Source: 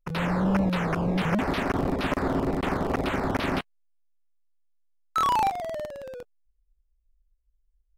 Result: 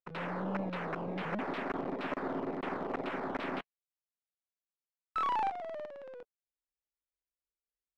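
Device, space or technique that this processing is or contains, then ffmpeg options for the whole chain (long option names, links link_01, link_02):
crystal radio: -af "highpass=240,lowpass=2800,aeval=exprs='if(lt(val(0),0),0.708*val(0),val(0))':channel_layout=same,volume=-7dB"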